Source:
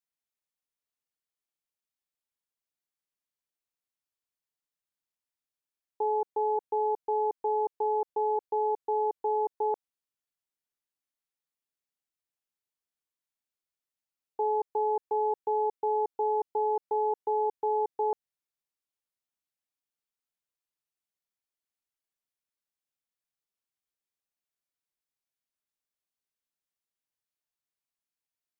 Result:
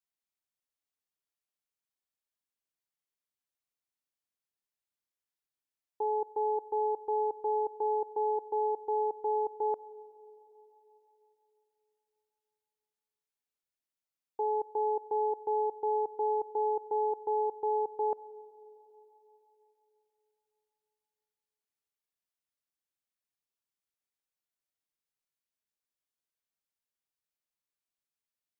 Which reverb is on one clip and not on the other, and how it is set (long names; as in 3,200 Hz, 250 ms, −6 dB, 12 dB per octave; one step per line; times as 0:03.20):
four-comb reverb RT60 3.6 s, combs from 31 ms, DRR 19 dB
level −3 dB